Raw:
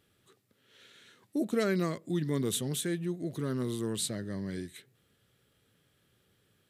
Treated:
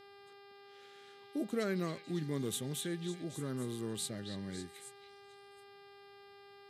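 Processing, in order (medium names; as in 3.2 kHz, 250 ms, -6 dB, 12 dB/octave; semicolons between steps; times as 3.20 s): repeats whose band climbs or falls 276 ms, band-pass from 3.3 kHz, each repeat 0.7 oct, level -5 dB; mains buzz 400 Hz, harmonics 13, -51 dBFS -5 dB/octave; trim -6 dB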